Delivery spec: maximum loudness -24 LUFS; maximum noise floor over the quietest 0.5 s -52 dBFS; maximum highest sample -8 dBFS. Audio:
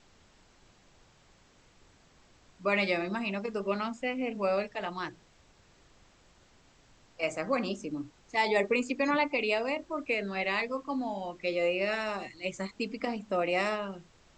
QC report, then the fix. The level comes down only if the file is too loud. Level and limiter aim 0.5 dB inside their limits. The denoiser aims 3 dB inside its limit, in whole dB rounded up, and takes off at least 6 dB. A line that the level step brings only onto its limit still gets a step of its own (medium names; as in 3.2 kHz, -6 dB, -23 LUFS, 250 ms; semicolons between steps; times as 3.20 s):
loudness -31.5 LUFS: pass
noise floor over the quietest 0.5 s -62 dBFS: pass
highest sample -13.5 dBFS: pass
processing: none needed